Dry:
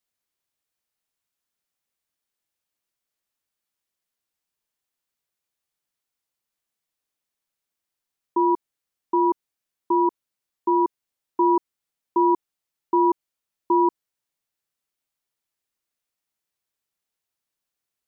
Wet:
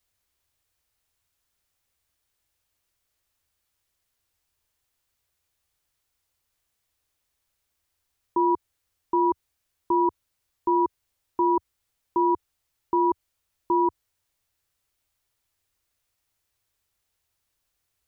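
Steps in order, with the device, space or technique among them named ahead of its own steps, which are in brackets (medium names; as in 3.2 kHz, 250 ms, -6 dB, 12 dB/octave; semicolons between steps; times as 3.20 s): car stereo with a boomy subwoofer (resonant low shelf 120 Hz +10.5 dB, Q 1.5; peak limiter -22 dBFS, peak gain reduction 10 dB); trim +7 dB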